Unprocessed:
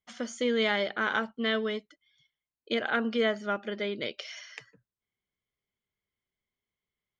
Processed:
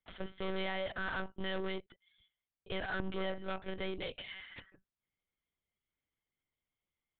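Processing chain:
tube saturation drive 32 dB, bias 0.3
one-pitch LPC vocoder at 8 kHz 190 Hz
level −1.5 dB

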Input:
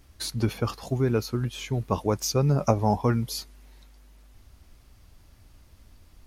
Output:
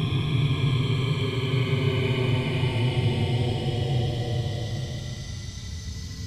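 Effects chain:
every frequency bin delayed by itself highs late, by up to 400 ms
delay with pitch and tempo change per echo 185 ms, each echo −4 semitones, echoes 2, each echo −6 dB
extreme stretch with random phases 46×, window 0.05 s, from 0:01.72
level +1.5 dB

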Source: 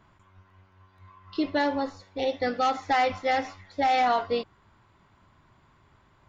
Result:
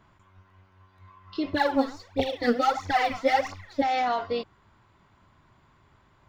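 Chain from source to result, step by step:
brickwall limiter −19.5 dBFS, peak gain reduction 4.5 dB
0:01.53–0:03.82: phase shifter 1.5 Hz, delay 4.6 ms, feedback 76%

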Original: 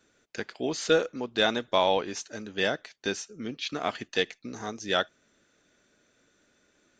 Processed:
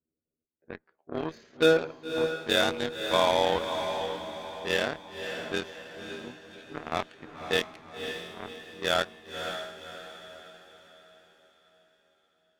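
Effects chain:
low-pass that shuts in the quiet parts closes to 370 Hz, open at −22.5 dBFS
gate on every frequency bin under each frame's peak −30 dB strong
time stretch by overlap-add 1.8×, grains 56 ms
in parallel at −9.5 dB: wave folding −21.5 dBFS
on the sum: harmonic generator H 7 −18 dB, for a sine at −10 dBFS
on a send: feedback delay with all-pass diffusion 556 ms, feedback 44%, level −7 dB

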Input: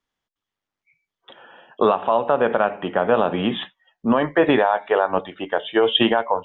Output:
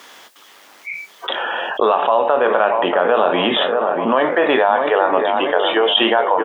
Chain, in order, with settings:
high-pass filter 410 Hz 12 dB per octave
double-tracking delay 23 ms −12 dB
on a send: delay with a low-pass on its return 635 ms, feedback 54%, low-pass 1,700 Hz, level −11 dB
on the sum: envelope flattener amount 70%
level +1.5 dB

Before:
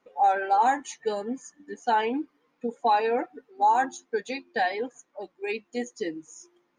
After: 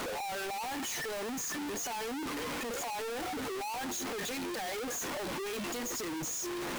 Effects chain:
sign of each sample alone
level −9 dB

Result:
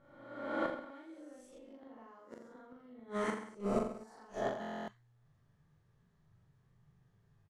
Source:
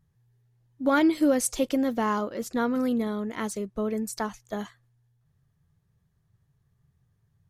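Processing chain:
peak hold with a rise ahead of every peak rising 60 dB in 1.08 s
parametric band 69 Hz −10.5 dB 2 octaves
downward compressor 2.5 to 1, threshold −28 dBFS, peak gain reduction 8 dB
double-tracking delay 40 ms −10 dB
gate with flip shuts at −22 dBFS, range −27 dB
low-pass filter 8,300 Hz 12 dB per octave
high-shelf EQ 3,500 Hz −9 dB
reverse bouncing-ball delay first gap 40 ms, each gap 1.1×, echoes 5
buffer that repeats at 0:04.60, samples 1,024, times 11
0:01.58–0:03.60: one half of a high-frequency compander decoder only
level −1 dB

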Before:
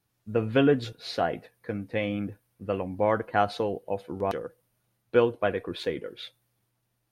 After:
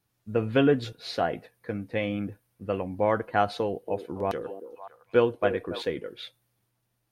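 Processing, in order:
0:03.58–0:05.82: echo through a band-pass that steps 281 ms, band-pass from 380 Hz, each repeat 1.4 octaves, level −7.5 dB

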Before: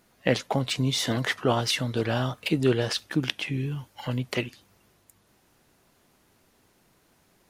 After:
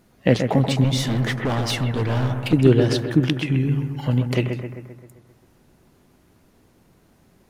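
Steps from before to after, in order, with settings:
low-shelf EQ 490 Hz +10.5 dB
0:00.84–0:02.53: hard clipping −19.5 dBFS, distortion −9 dB
bucket-brigade delay 131 ms, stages 2,048, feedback 57%, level −6.5 dB

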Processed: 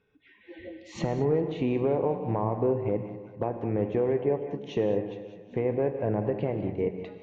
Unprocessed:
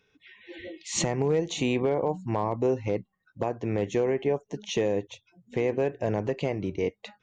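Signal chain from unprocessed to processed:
high-frequency loss of the air 130 metres
on a send: echo with a time of its own for lows and highs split 580 Hz, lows 147 ms, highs 195 ms, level −12.5 dB
on the sum: treble cut that deepens with the level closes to 2,500 Hz, closed at −24 dBFS
high-shelf EQ 2,300 Hz −11.5 dB
reverb whose tail is shaped and stops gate 240 ms flat, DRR 8.5 dB

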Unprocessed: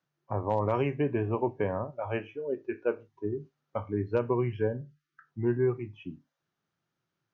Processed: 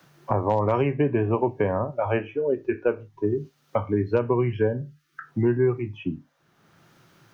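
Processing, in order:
multiband upward and downward compressor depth 70%
level +6 dB

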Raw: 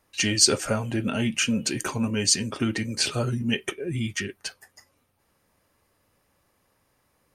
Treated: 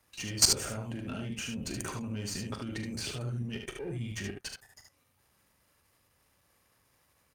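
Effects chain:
gain on one half-wave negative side −7 dB
high-pass filter 44 Hz
low-shelf EQ 170 Hz +11 dB
output level in coarse steps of 19 dB
on a send: ambience of single reflections 40 ms −10 dB, 74 ms −5 dB
on the sum: one half of a high-frequency compander encoder only

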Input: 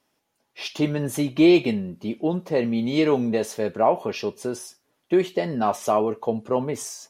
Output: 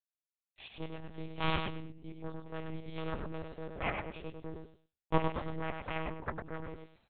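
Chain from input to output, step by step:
downward expander −40 dBFS
0:04.28–0:06.31: parametric band 160 Hz +11 dB 1.3 octaves
harmonic generator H 3 −6 dB, 5 −28 dB, 6 −26 dB, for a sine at −5.5 dBFS
repeating echo 103 ms, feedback 24%, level −5 dB
one-pitch LPC vocoder at 8 kHz 160 Hz
level −6.5 dB

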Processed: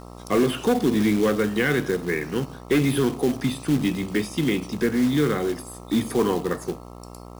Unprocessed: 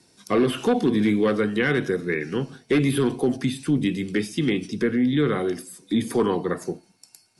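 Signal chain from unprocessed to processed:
hum with harmonics 60 Hz, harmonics 22, −41 dBFS −3 dB per octave
floating-point word with a short mantissa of 2 bits

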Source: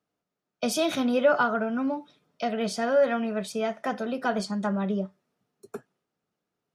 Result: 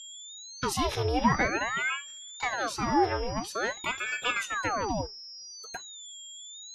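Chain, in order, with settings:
frequency shifter +21 Hz
steady tone 5,300 Hz −39 dBFS
ring modulator whose carrier an LFO sweeps 1,100 Hz, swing 85%, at 0.48 Hz

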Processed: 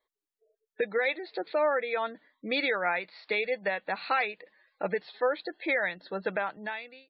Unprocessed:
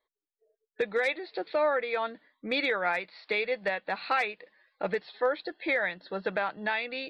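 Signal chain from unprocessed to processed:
fade-out on the ending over 0.77 s
gate on every frequency bin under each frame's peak −30 dB strong

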